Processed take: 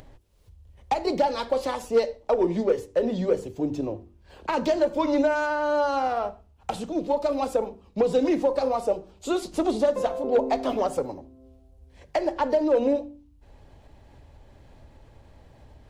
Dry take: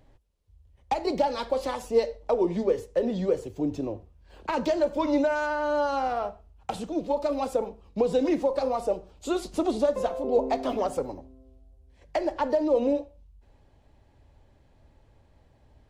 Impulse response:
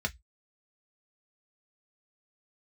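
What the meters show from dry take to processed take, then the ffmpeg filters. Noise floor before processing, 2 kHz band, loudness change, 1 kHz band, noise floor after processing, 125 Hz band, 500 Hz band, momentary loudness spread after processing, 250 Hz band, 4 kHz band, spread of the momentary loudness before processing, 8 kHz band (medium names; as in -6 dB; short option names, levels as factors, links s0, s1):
-61 dBFS, +2.5 dB, +2.0 dB, +2.0 dB, -56 dBFS, +1.5 dB, +2.0 dB, 9 LU, +1.5 dB, +2.0 dB, 9 LU, +2.0 dB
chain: -af "aeval=exprs='0.266*(cos(1*acos(clip(val(0)/0.266,-1,1)))-cos(1*PI/2))+0.0266*(cos(5*acos(clip(val(0)/0.266,-1,1)))-cos(5*PI/2))+0.015*(cos(7*acos(clip(val(0)/0.266,-1,1)))-cos(7*PI/2))':c=same,acompressor=mode=upward:threshold=0.00794:ratio=2.5,bandreject=f=48.57:t=h:w=4,bandreject=f=97.14:t=h:w=4,bandreject=f=145.71:t=h:w=4,bandreject=f=194.28:t=h:w=4,bandreject=f=242.85:t=h:w=4,bandreject=f=291.42:t=h:w=4,bandreject=f=339.99:t=h:w=4,bandreject=f=388.56:t=h:w=4,volume=1.12"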